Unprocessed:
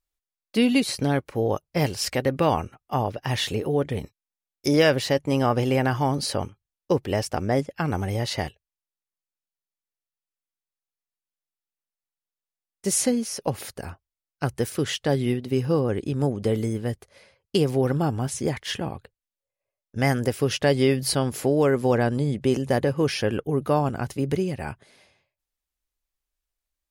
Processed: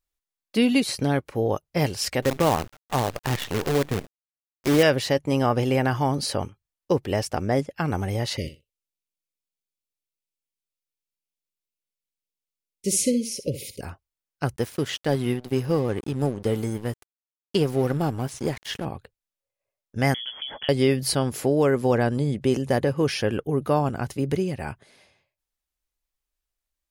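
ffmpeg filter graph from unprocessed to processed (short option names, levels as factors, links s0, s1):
-filter_complex "[0:a]asettb=1/sr,asplit=3[s0][s1][s2];[s0]atrim=end=2.224[s3];[s1]atrim=start=2.22:end=4.83,asetpts=PTS-STARTPTS,afade=t=in:d=0.004:c=qsin,afade=t=out:st=2.606:d=0.004:c=qsin,lowpass=3700,aemphasis=mode=reproduction:type=cd,acrusher=bits=5:dc=4:mix=0:aa=0.000001[s4];[s2]atrim=start=4.826[s5];[s3][s4]acrossfade=d=0.004:c1=hsin:c2=qsin[s6];[s6][s5]acrossfade=d=0.004:c1=qsin:c2=hsin,asettb=1/sr,asplit=3[s7][s8][s9];[s7]atrim=end=8.374[s10];[s8]atrim=start=8.37:end=13.81,asetpts=PTS-STARTPTS,afade=t=in:d=0.004:c=qsin,afade=t=out:st=5.436:d=0.004:c=qsin,asuperstop=centerf=1100:order=20:qfactor=0.73,aecho=1:1:62|124:0.237|0.0379,atrim=end_sample=239904[s11];[s9]atrim=start=13.806[s12];[s10][s11]acrossfade=d=0.004:c1=hsin:c2=qsin[s13];[s13][s12]acrossfade=d=0.004:c1=qsin:c2=hsin,asettb=1/sr,asplit=3[s14][s15][s16];[s14]atrim=end=14.564[s17];[s15]atrim=start=14.56:end=18.85,asetpts=PTS-STARTPTS,afade=t=in:d=0.004:c=qsin,afade=t=out:st=4.286:d=0.004:c=qsin,highshelf=f=10000:g=8.5,aeval=exprs='sgn(val(0))*max(abs(val(0))-0.0119,0)':c=same,acrossover=split=5400[s18][s19];[s19]acompressor=threshold=0.00891:ratio=4:attack=1:release=60[s20];[s18][s20]amix=inputs=2:normalize=0[s21];[s16]atrim=start=18.846[s22];[s17][s21]acrossfade=d=0.004:c1=hsin:c2=qsin[s23];[s23][s22]acrossfade=d=0.004:c1=qsin:c2=hsin,asettb=1/sr,asplit=3[s24][s25][s26];[s24]atrim=end=20.144[s27];[s25]atrim=start=20.14:end=20.69,asetpts=PTS-STARTPTS,afade=t=in:d=0.004:c=qsin,afade=t=out:st=0.546:d=0.004:c=qsin,bandreject=f=50:t=h:w=6,bandreject=f=100:t=h:w=6,bandreject=f=150:t=h:w=6,bandreject=f=200:t=h:w=6,bandreject=f=250:t=h:w=6,bandreject=f=300:t=h:w=6,bandreject=f=350:t=h:w=6,acompressor=threshold=0.0355:ratio=10:attack=3.2:release=140:knee=1:detection=peak,lowpass=f=3000:t=q:w=0.5098,lowpass=f=3000:t=q:w=0.6013,lowpass=f=3000:t=q:w=0.9,lowpass=f=3000:t=q:w=2.563,afreqshift=-3500[s28];[s26]atrim=start=20.686[s29];[s27][s28]acrossfade=d=0.004:c1=hsin:c2=qsin[s30];[s30][s29]acrossfade=d=0.004:c1=qsin:c2=hsin"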